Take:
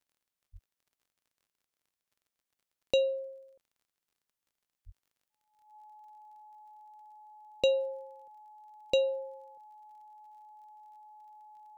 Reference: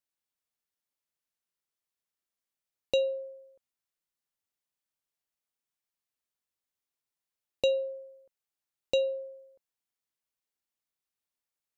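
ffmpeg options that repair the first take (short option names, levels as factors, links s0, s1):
-filter_complex "[0:a]adeclick=t=4,bandreject=f=850:w=30,asplit=3[s0][s1][s2];[s0]afade=t=out:st=0.52:d=0.02[s3];[s1]highpass=f=140:w=0.5412,highpass=f=140:w=1.3066,afade=t=in:st=0.52:d=0.02,afade=t=out:st=0.64:d=0.02[s4];[s2]afade=t=in:st=0.64:d=0.02[s5];[s3][s4][s5]amix=inputs=3:normalize=0,asplit=3[s6][s7][s8];[s6]afade=t=out:st=4.85:d=0.02[s9];[s7]highpass=f=140:w=0.5412,highpass=f=140:w=1.3066,afade=t=in:st=4.85:d=0.02,afade=t=out:st=4.97:d=0.02[s10];[s8]afade=t=in:st=4.97:d=0.02[s11];[s9][s10][s11]amix=inputs=3:normalize=0"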